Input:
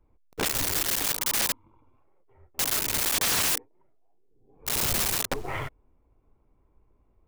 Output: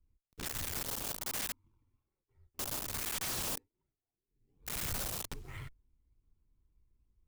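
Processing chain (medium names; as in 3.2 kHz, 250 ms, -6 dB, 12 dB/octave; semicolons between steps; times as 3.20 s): amplifier tone stack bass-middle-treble 6-0-2; in parallel at -6 dB: decimation with a swept rate 14×, swing 100% 1.2 Hz; on the sum: trim +2 dB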